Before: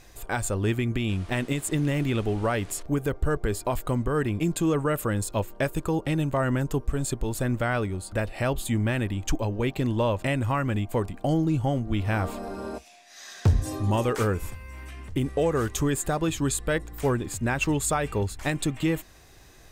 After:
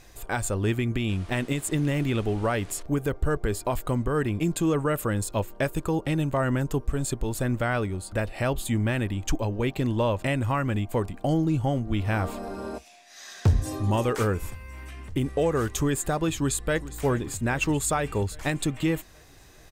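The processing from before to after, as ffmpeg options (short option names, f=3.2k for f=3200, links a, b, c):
-filter_complex "[0:a]asplit=2[a][b];[b]afade=t=in:st=16.34:d=0.01,afade=t=out:st=16.95:d=0.01,aecho=0:1:410|820|1230|1640|2050|2460|2870:0.158489|0.103018|0.0669617|0.0435251|0.0282913|0.0183894|0.0119531[c];[a][c]amix=inputs=2:normalize=0"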